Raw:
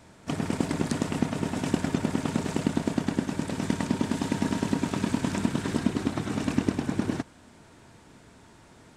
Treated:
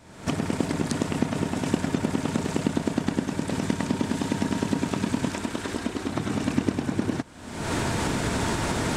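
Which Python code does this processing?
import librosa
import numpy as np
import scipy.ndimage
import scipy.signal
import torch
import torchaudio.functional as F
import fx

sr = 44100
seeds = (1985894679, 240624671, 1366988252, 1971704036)

y = fx.recorder_agc(x, sr, target_db=-17.5, rise_db_per_s=52.0, max_gain_db=30)
y = fx.peak_eq(y, sr, hz=150.0, db=-12.5, octaves=1.1, at=(5.3, 6.09))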